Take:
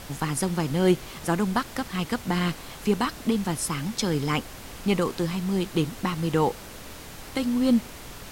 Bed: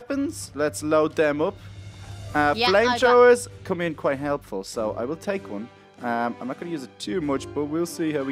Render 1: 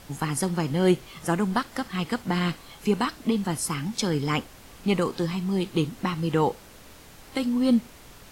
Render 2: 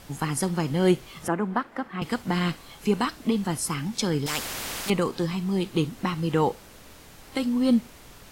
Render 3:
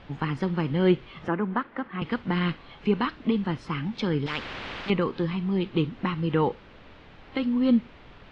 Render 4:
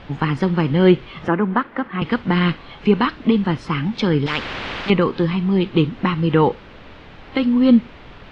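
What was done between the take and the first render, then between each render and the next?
noise print and reduce 7 dB
1.28–2.02 three-band isolator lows -14 dB, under 180 Hz, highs -19 dB, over 2300 Hz; 4.26–4.9 spectral compressor 4:1
dynamic EQ 710 Hz, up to -6 dB, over -44 dBFS, Q 3.1; LPF 3400 Hz 24 dB/oct
gain +8.5 dB; limiter -3 dBFS, peak gain reduction 1 dB

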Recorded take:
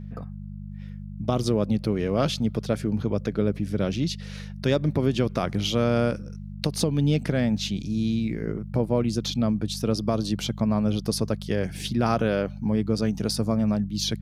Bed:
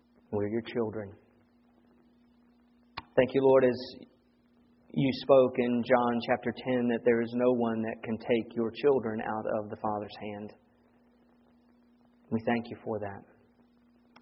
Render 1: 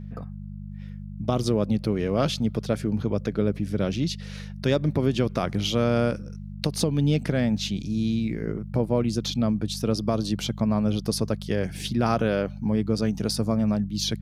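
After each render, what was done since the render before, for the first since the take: nothing audible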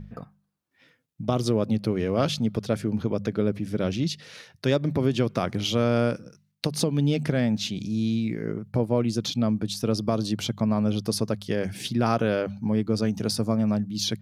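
de-hum 50 Hz, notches 4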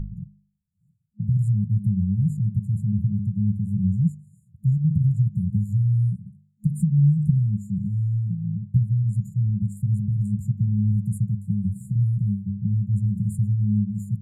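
FFT band-reject 210–6900 Hz; tilt -3 dB/oct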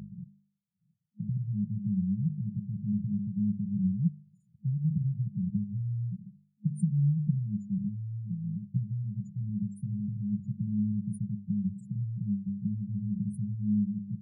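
spectral gate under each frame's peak -25 dB strong; Chebyshev high-pass 250 Hz, order 2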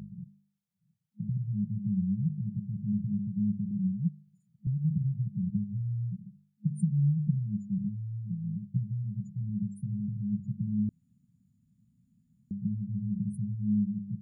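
3.71–4.67 HPF 150 Hz; 10.89–12.51 room tone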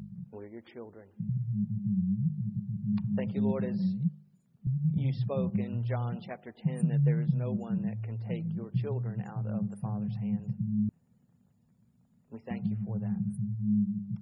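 add bed -13.5 dB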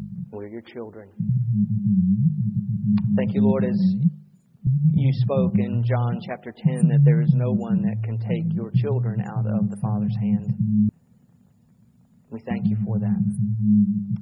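gain +10 dB

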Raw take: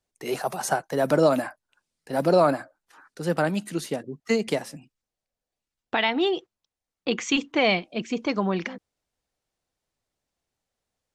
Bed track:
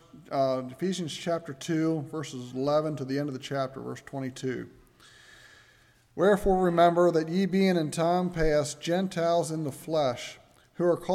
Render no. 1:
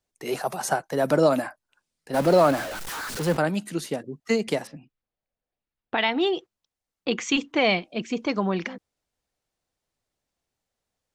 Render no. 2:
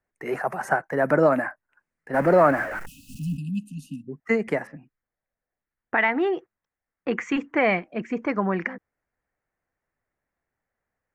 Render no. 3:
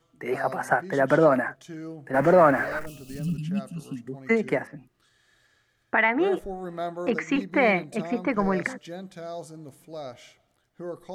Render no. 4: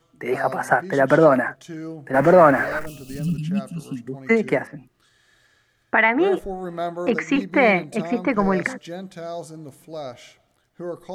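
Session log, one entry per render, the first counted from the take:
2.14–3.37 zero-crossing step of -27.5 dBFS; 4.67–5.98 air absorption 240 m
2.86–4.08 spectral delete 290–2500 Hz; resonant high shelf 2600 Hz -12 dB, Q 3
add bed track -11 dB
gain +4.5 dB

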